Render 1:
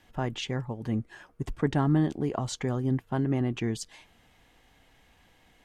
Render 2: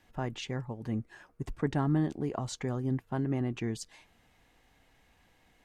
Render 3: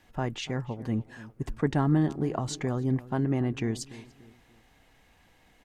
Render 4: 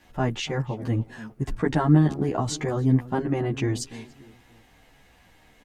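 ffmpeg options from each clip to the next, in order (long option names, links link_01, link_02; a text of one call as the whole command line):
ffmpeg -i in.wav -af "equalizer=frequency=3200:width_type=o:width=0.2:gain=-4.5,volume=-4dB" out.wav
ffmpeg -i in.wav -filter_complex "[0:a]asplit=2[link_01][link_02];[link_02]adelay=291,lowpass=frequency=1800:poles=1,volume=-17dB,asplit=2[link_03][link_04];[link_04]adelay=291,lowpass=frequency=1800:poles=1,volume=0.4,asplit=2[link_05][link_06];[link_06]adelay=291,lowpass=frequency=1800:poles=1,volume=0.4[link_07];[link_01][link_03][link_05][link_07]amix=inputs=4:normalize=0,volume=4dB" out.wav
ffmpeg -i in.wav -filter_complex "[0:a]asplit=2[link_01][link_02];[link_02]adelay=11.7,afreqshift=-1.4[link_03];[link_01][link_03]amix=inputs=2:normalize=1,volume=8dB" out.wav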